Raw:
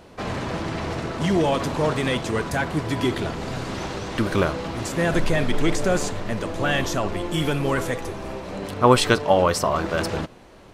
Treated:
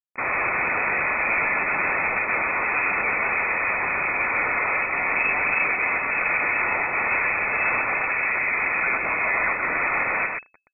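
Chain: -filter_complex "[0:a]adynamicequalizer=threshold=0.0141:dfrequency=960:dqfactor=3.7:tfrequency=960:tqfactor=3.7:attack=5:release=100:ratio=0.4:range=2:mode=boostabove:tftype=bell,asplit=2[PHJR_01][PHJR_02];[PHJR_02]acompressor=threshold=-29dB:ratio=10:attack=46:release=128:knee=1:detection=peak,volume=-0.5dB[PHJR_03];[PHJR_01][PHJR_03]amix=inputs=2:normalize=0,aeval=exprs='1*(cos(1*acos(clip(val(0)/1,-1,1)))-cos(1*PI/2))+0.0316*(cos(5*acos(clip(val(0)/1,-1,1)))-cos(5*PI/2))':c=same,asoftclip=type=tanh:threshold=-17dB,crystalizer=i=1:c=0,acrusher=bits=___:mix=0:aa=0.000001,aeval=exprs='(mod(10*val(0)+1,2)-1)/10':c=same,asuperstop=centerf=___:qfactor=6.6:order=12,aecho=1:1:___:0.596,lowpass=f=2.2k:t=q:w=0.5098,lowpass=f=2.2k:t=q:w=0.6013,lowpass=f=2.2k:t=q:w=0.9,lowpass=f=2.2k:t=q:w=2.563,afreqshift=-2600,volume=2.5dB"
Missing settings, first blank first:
4, 990, 126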